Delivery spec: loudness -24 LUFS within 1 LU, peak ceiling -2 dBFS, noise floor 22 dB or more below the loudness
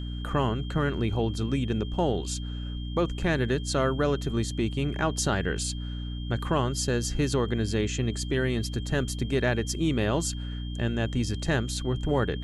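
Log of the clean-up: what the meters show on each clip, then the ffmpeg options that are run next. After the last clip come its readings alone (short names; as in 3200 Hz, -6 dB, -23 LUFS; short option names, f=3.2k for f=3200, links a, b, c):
hum 60 Hz; harmonics up to 300 Hz; hum level -31 dBFS; steady tone 3200 Hz; tone level -45 dBFS; loudness -28.0 LUFS; peak -13.0 dBFS; loudness target -24.0 LUFS
-> -af "bandreject=f=60:t=h:w=6,bandreject=f=120:t=h:w=6,bandreject=f=180:t=h:w=6,bandreject=f=240:t=h:w=6,bandreject=f=300:t=h:w=6"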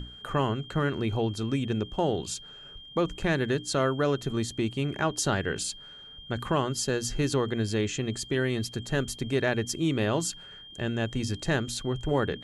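hum none; steady tone 3200 Hz; tone level -45 dBFS
-> -af "bandreject=f=3.2k:w=30"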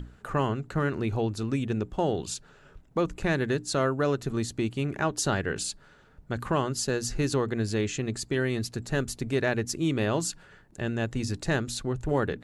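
steady tone none; loudness -29.0 LUFS; peak -14.5 dBFS; loudness target -24.0 LUFS
-> -af "volume=5dB"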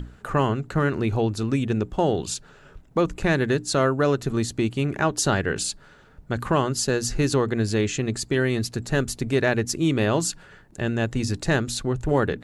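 loudness -24.0 LUFS; peak -9.5 dBFS; noise floor -51 dBFS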